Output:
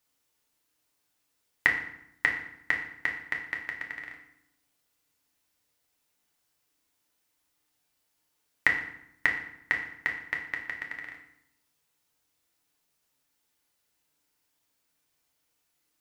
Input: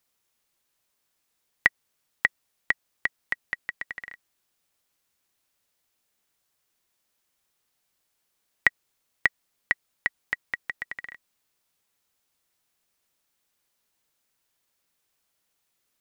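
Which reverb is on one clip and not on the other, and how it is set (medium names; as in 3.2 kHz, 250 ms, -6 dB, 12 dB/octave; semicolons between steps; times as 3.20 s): FDN reverb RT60 0.75 s, low-frequency decay 1.4×, high-frequency decay 0.8×, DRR 0 dB; trim -3 dB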